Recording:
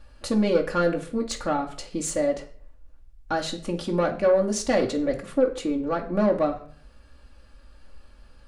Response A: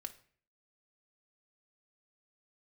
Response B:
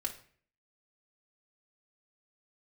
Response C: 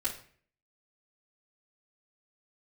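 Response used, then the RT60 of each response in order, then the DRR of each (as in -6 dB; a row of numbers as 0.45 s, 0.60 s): B; 0.50 s, 0.50 s, 0.50 s; 5.0 dB, -0.5 dB, -8.5 dB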